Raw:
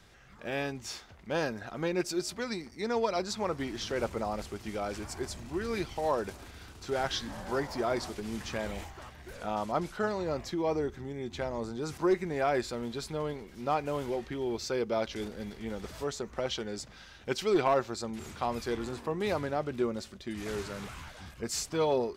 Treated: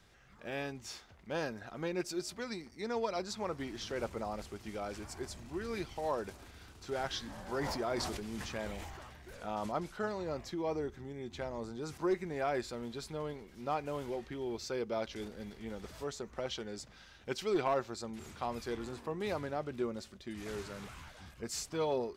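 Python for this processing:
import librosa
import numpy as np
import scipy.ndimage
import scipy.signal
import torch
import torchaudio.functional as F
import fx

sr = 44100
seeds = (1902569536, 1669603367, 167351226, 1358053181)

y = fx.sustainer(x, sr, db_per_s=28.0, at=(7.49, 9.72))
y = y * librosa.db_to_amplitude(-5.5)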